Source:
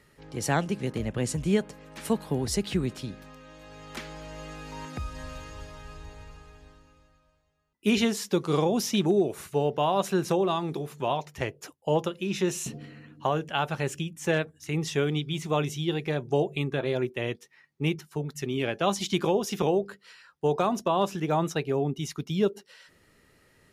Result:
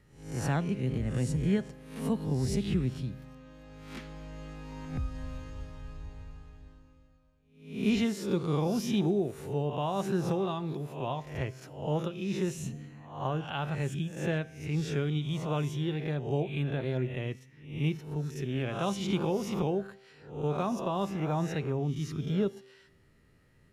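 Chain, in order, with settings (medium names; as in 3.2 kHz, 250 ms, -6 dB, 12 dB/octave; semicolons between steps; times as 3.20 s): reverse spectral sustain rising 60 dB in 0.55 s; tone controls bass +10 dB, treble -4 dB; feedback comb 130 Hz, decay 1 s, harmonics all, mix 50%; trim -3.5 dB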